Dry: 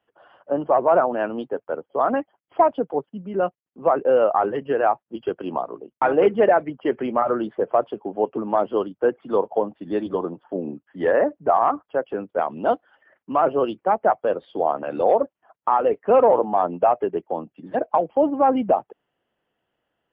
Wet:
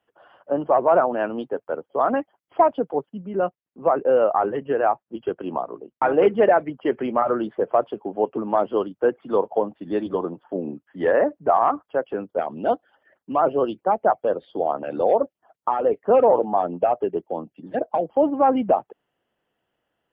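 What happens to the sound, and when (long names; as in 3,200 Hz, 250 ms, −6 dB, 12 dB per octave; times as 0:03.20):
0:03.21–0:06.14: high-frequency loss of the air 190 metres
0:12.26–0:18.14: auto-filter notch sine 4.5 Hz 970–2,600 Hz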